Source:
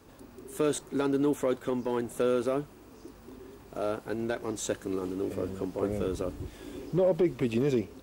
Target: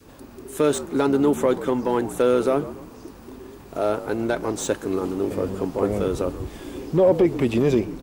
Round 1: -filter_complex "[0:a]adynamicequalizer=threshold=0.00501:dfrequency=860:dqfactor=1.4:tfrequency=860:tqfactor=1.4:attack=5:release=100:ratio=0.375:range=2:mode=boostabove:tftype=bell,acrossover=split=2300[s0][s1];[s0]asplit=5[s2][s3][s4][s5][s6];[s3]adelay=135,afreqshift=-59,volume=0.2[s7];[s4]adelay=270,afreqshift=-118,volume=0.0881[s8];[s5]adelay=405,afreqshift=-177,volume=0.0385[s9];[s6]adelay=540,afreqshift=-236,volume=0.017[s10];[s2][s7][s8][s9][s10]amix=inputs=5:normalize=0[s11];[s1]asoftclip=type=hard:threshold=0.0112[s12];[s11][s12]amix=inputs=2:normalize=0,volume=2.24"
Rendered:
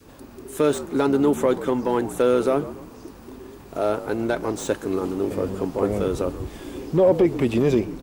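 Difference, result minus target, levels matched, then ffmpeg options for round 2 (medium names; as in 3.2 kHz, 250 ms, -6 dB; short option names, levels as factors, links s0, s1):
hard clipper: distortion +9 dB
-filter_complex "[0:a]adynamicequalizer=threshold=0.00501:dfrequency=860:dqfactor=1.4:tfrequency=860:tqfactor=1.4:attack=5:release=100:ratio=0.375:range=2:mode=boostabove:tftype=bell,acrossover=split=2300[s0][s1];[s0]asplit=5[s2][s3][s4][s5][s6];[s3]adelay=135,afreqshift=-59,volume=0.2[s7];[s4]adelay=270,afreqshift=-118,volume=0.0881[s8];[s5]adelay=405,afreqshift=-177,volume=0.0385[s9];[s6]adelay=540,afreqshift=-236,volume=0.017[s10];[s2][s7][s8][s9][s10]amix=inputs=5:normalize=0[s11];[s1]asoftclip=type=hard:threshold=0.0251[s12];[s11][s12]amix=inputs=2:normalize=0,volume=2.24"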